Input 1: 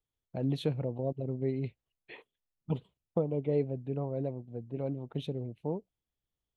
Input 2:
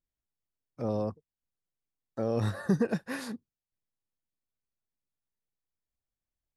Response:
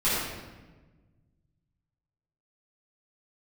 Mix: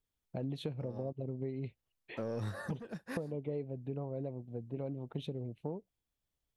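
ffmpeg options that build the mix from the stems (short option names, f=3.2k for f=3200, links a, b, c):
-filter_complex "[0:a]volume=0dB,asplit=2[a][b];[1:a]asoftclip=type=tanh:threshold=-24.5dB,volume=-1.5dB[c];[b]apad=whole_len=289528[d];[c][d]sidechaincompress=threshold=-41dB:ratio=4:attack=9.5:release=485[e];[a][e]amix=inputs=2:normalize=0,acompressor=threshold=-35dB:ratio=5"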